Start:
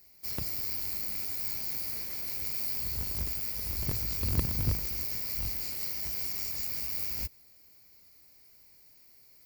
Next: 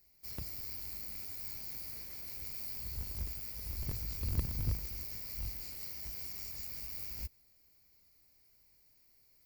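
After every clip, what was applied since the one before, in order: bass shelf 83 Hz +9.5 dB; trim -9 dB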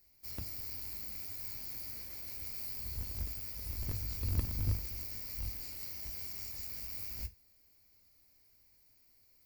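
gated-style reverb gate 90 ms falling, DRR 9.5 dB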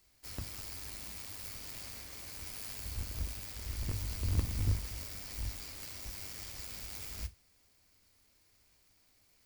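median filter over 3 samples; trim +2 dB

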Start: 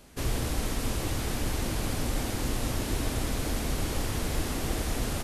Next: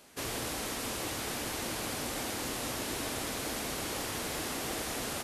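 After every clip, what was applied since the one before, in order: high-pass 460 Hz 6 dB/octave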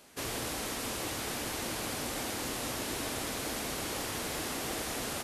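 no audible change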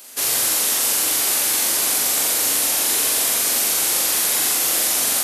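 RIAA curve recording; flutter echo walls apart 7.4 m, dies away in 0.64 s; trim +7 dB

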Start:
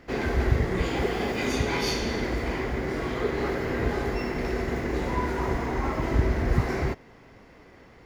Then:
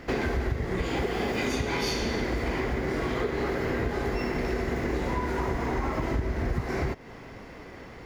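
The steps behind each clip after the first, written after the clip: compression 6:1, threshold -33 dBFS, peak gain reduction 16.5 dB; trim +7.5 dB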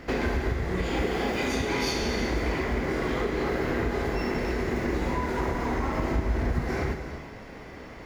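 flutter echo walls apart 6.5 m, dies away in 0.2 s; gated-style reverb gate 400 ms flat, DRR 6.5 dB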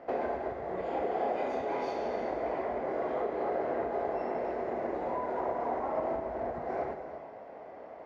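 band-pass filter 660 Hz, Q 3.5; trim +5.5 dB

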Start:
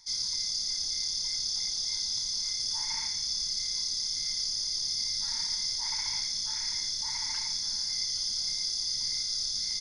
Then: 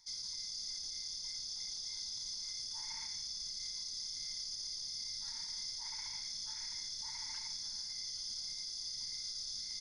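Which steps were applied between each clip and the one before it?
peak limiter -25 dBFS, peak gain reduction 5.5 dB; trim -8.5 dB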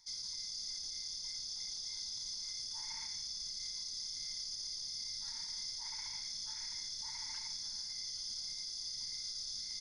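no audible change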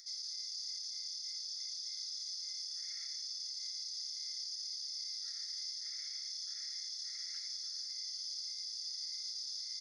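upward compressor, threshold -48 dBFS; rippled Chebyshev high-pass 1.3 kHz, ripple 9 dB; trim +1 dB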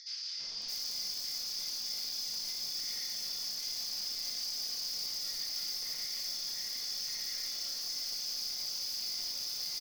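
in parallel at -6 dB: integer overflow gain 39 dB; on the sum: three bands offset in time mids, lows, highs 320/620 ms, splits 1.4/5.3 kHz; simulated room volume 350 m³, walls furnished, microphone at 1.7 m; trim +4 dB

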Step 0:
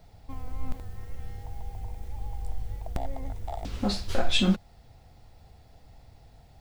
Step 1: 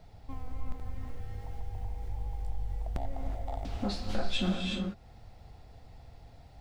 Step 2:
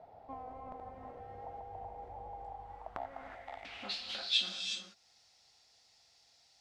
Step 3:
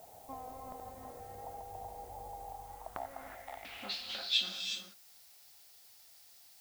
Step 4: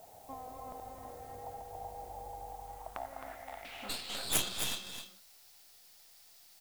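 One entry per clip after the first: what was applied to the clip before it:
treble shelf 7.2 kHz -9 dB; gated-style reverb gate 400 ms rising, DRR 3.5 dB; compression 1.5:1, threshold -37 dBFS, peak gain reduction 8 dB
band-pass sweep 690 Hz -> 5.7 kHz, 2.38–4.69 s; trim +9.5 dB
added noise blue -60 dBFS
tracing distortion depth 0.3 ms; on a send: delay 264 ms -7.5 dB

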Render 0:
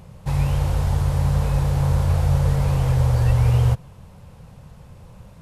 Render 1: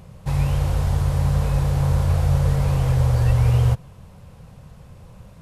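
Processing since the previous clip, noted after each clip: band-stop 880 Hz, Q 20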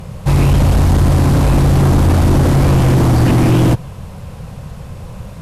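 sine folder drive 10 dB, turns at -7 dBFS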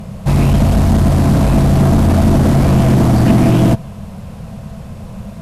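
small resonant body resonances 210/660 Hz, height 12 dB, ringing for 90 ms; trim -1.5 dB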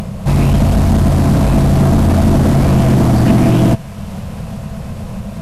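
upward compressor, threshold -17 dBFS; feedback echo behind a high-pass 458 ms, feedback 77%, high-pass 1.5 kHz, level -18 dB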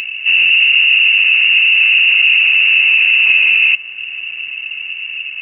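tilt shelf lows +6 dB, about 700 Hz; frequency inversion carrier 2.8 kHz; trim -6 dB

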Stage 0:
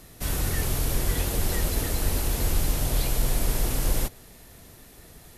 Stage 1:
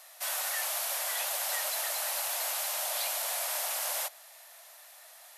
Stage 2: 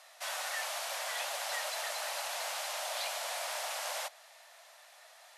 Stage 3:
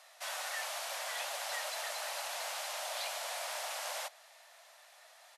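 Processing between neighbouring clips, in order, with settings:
steep high-pass 580 Hz 72 dB/octave
distance through air 63 m
resampled via 32 kHz; trim -2 dB

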